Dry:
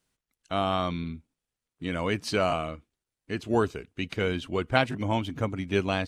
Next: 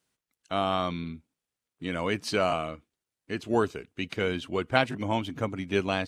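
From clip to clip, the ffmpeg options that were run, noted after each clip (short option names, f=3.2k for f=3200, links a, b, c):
-af "highpass=f=130:p=1"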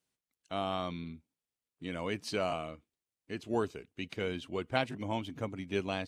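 -af "equalizer=f=1.4k:t=o:w=0.8:g=-3.5,volume=-6.5dB"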